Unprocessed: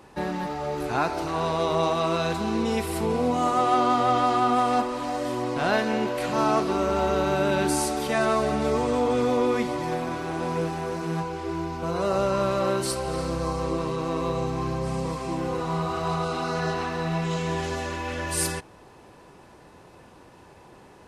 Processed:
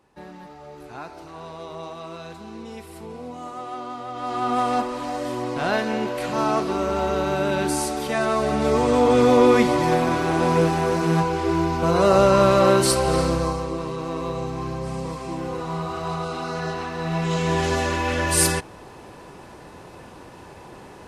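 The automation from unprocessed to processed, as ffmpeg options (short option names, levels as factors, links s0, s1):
-af "volume=7.08,afade=t=in:st=4.14:d=0.47:silence=0.237137,afade=t=in:st=8.3:d=1.18:silence=0.398107,afade=t=out:st=13.16:d=0.5:silence=0.334965,afade=t=in:st=16.94:d=0.81:silence=0.375837"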